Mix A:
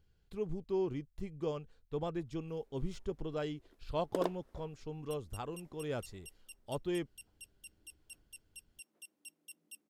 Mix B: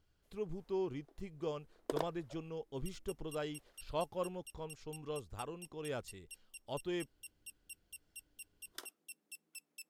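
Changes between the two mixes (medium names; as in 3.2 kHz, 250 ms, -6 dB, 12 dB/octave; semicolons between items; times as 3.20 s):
background: entry -2.25 s; master: add bass shelf 450 Hz -5.5 dB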